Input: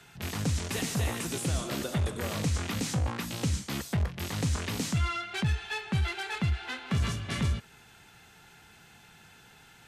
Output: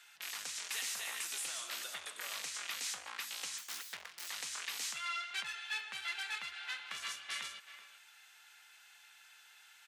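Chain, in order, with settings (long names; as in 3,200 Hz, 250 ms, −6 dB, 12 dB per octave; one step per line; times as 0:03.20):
0:03.58–0:04.28: phase distortion by the signal itself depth 0.31 ms
high-pass filter 1,500 Hz 12 dB per octave
far-end echo of a speakerphone 380 ms, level −12 dB
level −2.5 dB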